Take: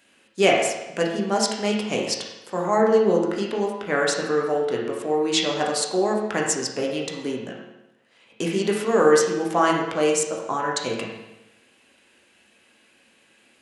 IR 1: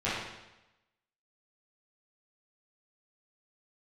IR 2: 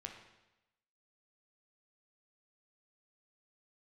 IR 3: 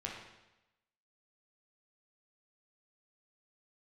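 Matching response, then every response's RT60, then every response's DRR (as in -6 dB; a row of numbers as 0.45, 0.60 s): 3; 0.95, 0.95, 0.95 s; -11.5, 2.5, -2.0 dB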